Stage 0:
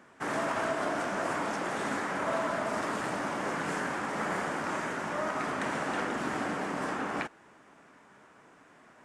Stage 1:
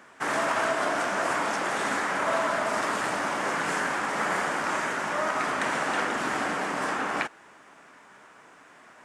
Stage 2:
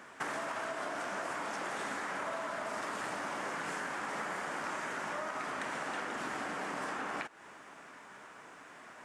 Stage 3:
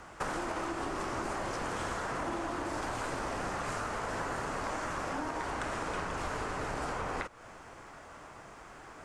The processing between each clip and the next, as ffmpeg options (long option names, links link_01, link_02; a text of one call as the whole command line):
ffmpeg -i in.wav -af "lowshelf=frequency=480:gain=-9.5,volume=7.5dB" out.wav
ffmpeg -i in.wav -af "acompressor=threshold=-35dB:ratio=10" out.wav
ffmpeg -i in.wav -af "afreqshift=-320,volume=2.5dB" out.wav